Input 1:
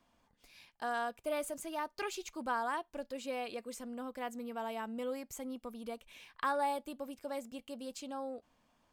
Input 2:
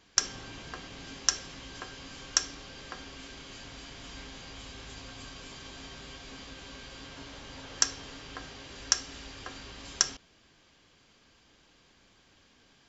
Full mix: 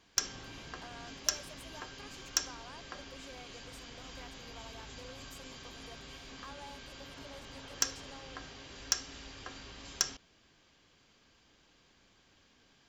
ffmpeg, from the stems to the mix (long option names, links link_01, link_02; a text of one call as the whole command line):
ffmpeg -i stem1.wav -i stem2.wav -filter_complex "[0:a]highpass=490,acompressor=threshold=-49dB:ratio=2.5,volume=-4.5dB[link_01];[1:a]volume=12.5dB,asoftclip=hard,volume=-12.5dB,volume=-3.5dB[link_02];[link_01][link_02]amix=inputs=2:normalize=0" out.wav